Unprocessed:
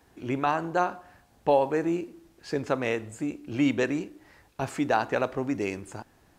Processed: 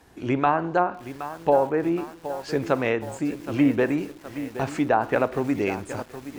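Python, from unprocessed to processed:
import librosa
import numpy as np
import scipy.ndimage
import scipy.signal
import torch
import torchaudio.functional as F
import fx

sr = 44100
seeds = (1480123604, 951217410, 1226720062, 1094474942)

y = fx.env_lowpass_down(x, sr, base_hz=1200.0, full_db=-19.0)
y = fx.rider(y, sr, range_db=4, speed_s=2.0)
y = fx.echo_crushed(y, sr, ms=770, feedback_pct=55, bits=7, wet_db=-12.0)
y = F.gain(torch.from_numpy(y), 4.0).numpy()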